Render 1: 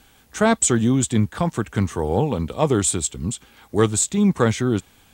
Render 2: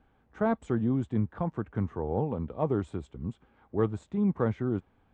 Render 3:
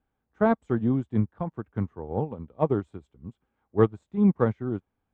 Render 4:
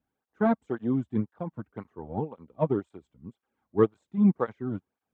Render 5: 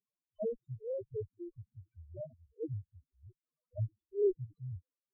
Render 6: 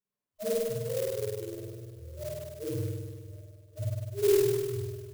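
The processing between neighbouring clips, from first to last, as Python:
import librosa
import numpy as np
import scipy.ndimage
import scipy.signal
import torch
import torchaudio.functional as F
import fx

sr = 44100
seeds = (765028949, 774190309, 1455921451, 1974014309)

y1 = scipy.signal.sosfilt(scipy.signal.butter(2, 1200.0, 'lowpass', fs=sr, output='sos'), x)
y1 = y1 * 10.0 ** (-9.0 / 20.0)
y2 = fx.upward_expand(y1, sr, threshold_db=-37.0, expansion=2.5)
y2 = y2 * 10.0 ** (8.5 / 20.0)
y3 = fx.flanger_cancel(y2, sr, hz=1.9, depth_ms=2.7)
y4 = np.abs(y3)
y4 = fx.notch_comb(y4, sr, f0_hz=830.0)
y4 = fx.spec_topn(y4, sr, count=1)
y4 = y4 * 10.0 ** (3.5 / 20.0)
y5 = y4 + 10.0 ** (-23.5 / 20.0) * np.pad(y4, (int(1111 * sr / 1000.0), 0))[:len(y4)]
y5 = fx.rev_spring(y5, sr, rt60_s=1.7, pass_ms=(50,), chirp_ms=50, drr_db=-9.0)
y5 = fx.clock_jitter(y5, sr, seeds[0], jitter_ms=0.08)
y5 = y5 * 10.0 ** (-2.0 / 20.0)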